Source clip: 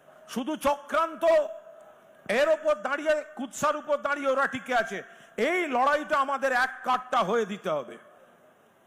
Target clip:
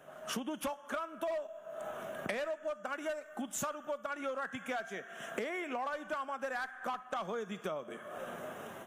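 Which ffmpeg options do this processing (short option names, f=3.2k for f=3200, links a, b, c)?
-filter_complex "[0:a]dynaudnorm=f=210:g=3:m=14.5dB,asettb=1/sr,asplit=3[a][b][c];[a]atrim=end=2.854[d];[b]atrim=start=2.85:end=4.1,asetpts=PTS-STARTPTS,afade=t=in:d=0.004:c=qsin,afade=t=out:st=1.246:d=0.004:c=qsin,highshelf=f=10k:g=10[e];[c]atrim=start=4.096[f];[d][e]acrossfade=d=0.004:c1=hsin:c2=qsin[g];[g][f]acrossfade=d=0.004:c1=qsin:c2=hsin,acompressor=threshold=-37dB:ratio=8,asettb=1/sr,asplit=3[h][i][j];[h]atrim=end=4.714[k];[i]atrim=start=4.71:end=5.89,asetpts=PTS-STARTPTS,afade=t=in:d=0.004:c=qsin,afade=t=out:st=1.176:d=0.004:c=qsin,lowshelf=f=81:g=-12[l];[j]atrim=start=5.886[m];[k][l]acrossfade=d=0.004:c1=hsin:c2=qsin[n];[n][m]acrossfade=d=0.004:c1=qsin:c2=hsin"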